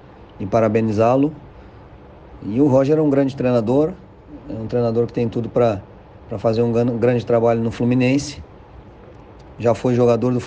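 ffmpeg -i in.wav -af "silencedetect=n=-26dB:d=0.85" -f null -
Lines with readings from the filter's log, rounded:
silence_start: 1.33
silence_end: 2.43 | silence_duration: 1.10
silence_start: 8.41
silence_end: 9.60 | silence_duration: 1.19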